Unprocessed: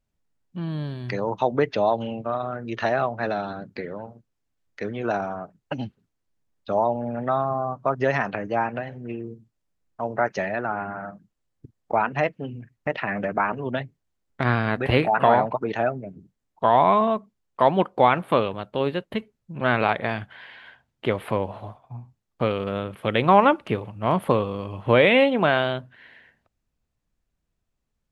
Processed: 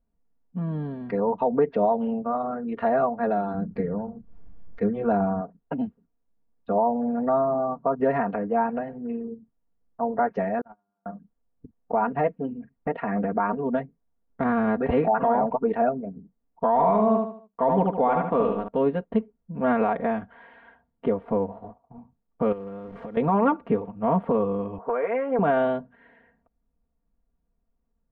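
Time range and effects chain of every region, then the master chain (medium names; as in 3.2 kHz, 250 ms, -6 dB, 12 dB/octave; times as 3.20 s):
3.54–5.41 s: upward compressor, threshold -37 dBFS + tone controls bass +11 dB, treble +6 dB + band-stop 250 Hz, Q 6.5
10.61–11.06 s: distance through air 350 m + gate -25 dBFS, range -48 dB
16.68–18.68 s: companding laws mixed up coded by A + feedback delay 75 ms, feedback 35%, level -5.5 dB
21.08–21.98 s: companding laws mixed up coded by A + peaking EQ 2.2 kHz -6.5 dB 2.4 oct
22.52–23.17 s: one-bit delta coder 64 kbps, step -34.5 dBFS + compression, threshold -34 dBFS
24.78–25.39 s: level-controlled noise filter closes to 640 Hz, open at -14 dBFS + cabinet simulation 400–2400 Hz, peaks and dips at 420 Hz +6 dB, 710 Hz +5 dB, 1.1 kHz +9 dB, 1.5 kHz +10 dB, 2.2 kHz +6 dB + compression 8:1, threshold -22 dBFS
whole clip: low-pass 1 kHz 12 dB/octave; comb 4.3 ms, depth 94%; peak limiter -12.5 dBFS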